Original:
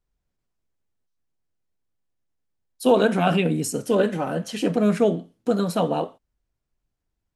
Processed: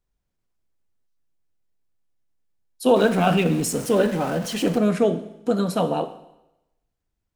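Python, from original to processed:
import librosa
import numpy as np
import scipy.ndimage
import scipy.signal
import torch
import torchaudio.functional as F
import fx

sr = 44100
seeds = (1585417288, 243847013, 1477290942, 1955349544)

y = fx.zero_step(x, sr, step_db=-31.0, at=(2.96, 4.78))
y = fx.rev_schroeder(y, sr, rt60_s=0.91, comb_ms=33, drr_db=12.5)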